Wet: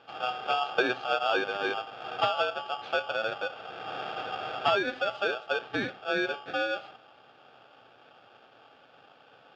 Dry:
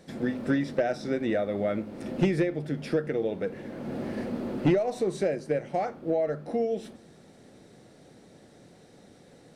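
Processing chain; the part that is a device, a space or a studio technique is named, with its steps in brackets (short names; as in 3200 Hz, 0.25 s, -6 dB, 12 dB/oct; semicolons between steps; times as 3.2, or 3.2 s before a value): 0.61–1.39 low shelf 490 Hz +5 dB; ring modulator pedal into a guitar cabinet (polarity switched at an audio rate 1000 Hz; speaker cabinet 95–3700 Hz, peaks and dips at 120 Hz +8 dB, 1200 Hz -5 dB, 1800 Hz -3 dB); gain -1 dB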